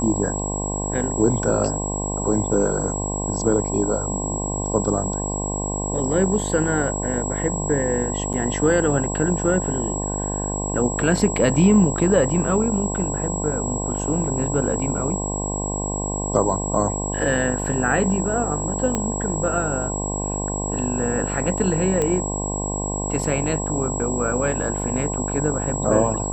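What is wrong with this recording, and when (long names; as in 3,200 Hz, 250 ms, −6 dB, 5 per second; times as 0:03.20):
mains buzz 50 Hz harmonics 21 −27 dBFS
whistle 7,700 Hz −28 dBFS
0:08.33–0:08.34: drop-out 7.8 ms
0:18.95: click −9 dBFS
0:22.02: click −10 dBFS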